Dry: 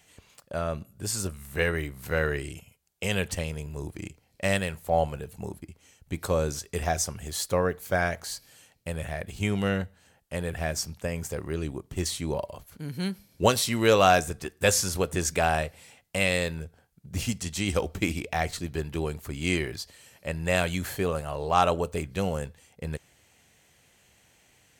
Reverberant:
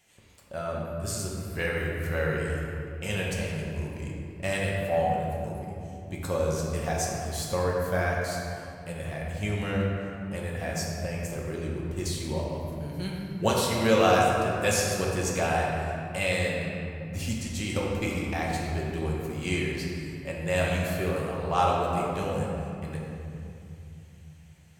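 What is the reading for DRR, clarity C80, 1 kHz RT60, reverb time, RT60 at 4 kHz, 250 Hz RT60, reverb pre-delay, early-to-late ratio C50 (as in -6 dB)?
-3.5 dB, 1.0 dB, 2.7 s, 2.7 s, 1.5 s, 3.6 s, 5 ms, -0.5 dB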